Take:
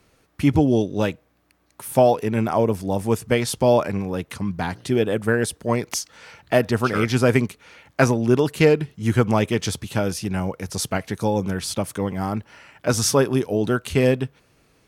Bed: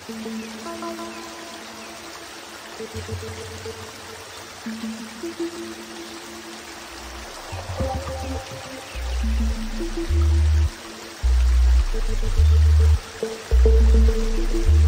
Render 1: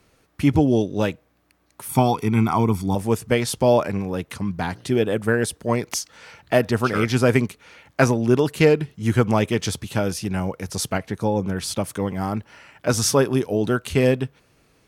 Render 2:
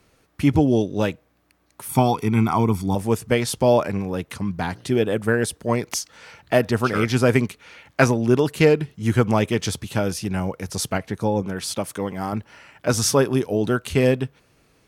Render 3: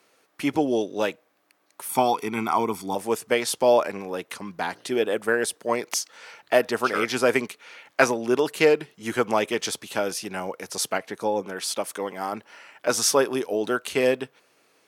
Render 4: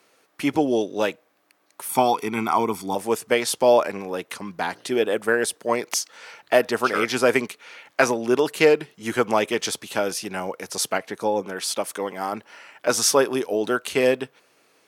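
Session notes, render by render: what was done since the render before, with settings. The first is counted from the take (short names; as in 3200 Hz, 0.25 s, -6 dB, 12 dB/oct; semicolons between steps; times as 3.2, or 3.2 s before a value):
1.89–2.95 comb 0.9 ms, depth 84%; 10.98–11.57 high shelf 2700 Hz -7.5 dB
7.42–8.07 bell 2700 Hz +3 dB 1.9 oct; 11.42–12.33 low shelf 140 Hz -9.5 dB
HPF 390 Hz 12 dB/oct
gain +2 dB; limiter -3 dBFS, peak gain reduction 3 dB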